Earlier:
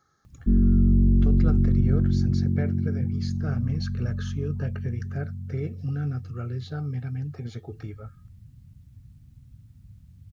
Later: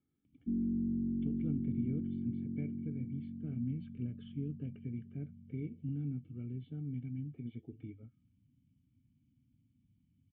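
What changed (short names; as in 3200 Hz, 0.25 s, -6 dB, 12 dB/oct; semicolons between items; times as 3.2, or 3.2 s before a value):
background: add HPF 400 Hz 6 dB/oct; master: add vocal tract filter i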